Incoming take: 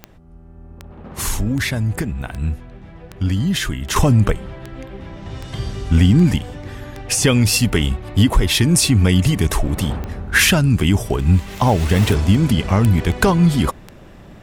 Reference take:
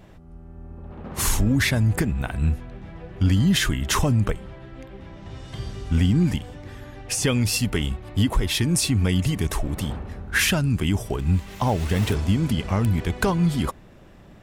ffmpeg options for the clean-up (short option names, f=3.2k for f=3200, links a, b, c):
-af "adeclick=t=4,asetnsamples=n=441:p=0,asendcmd='3.96 volume volume -7dB',volume=0dB"